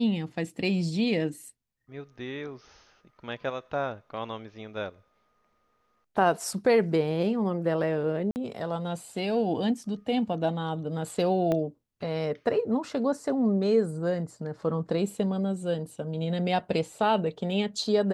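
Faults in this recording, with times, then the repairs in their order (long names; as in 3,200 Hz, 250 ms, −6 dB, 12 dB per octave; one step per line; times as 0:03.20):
0:08.31–0:08.36: drop-out 49 ms
0:11.52: click −16 dBFS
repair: click removal
repair the gap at 0:08.31, 49 ms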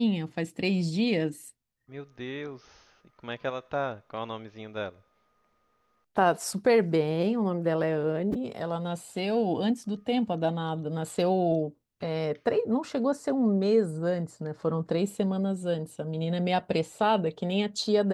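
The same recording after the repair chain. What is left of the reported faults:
0:11.52: click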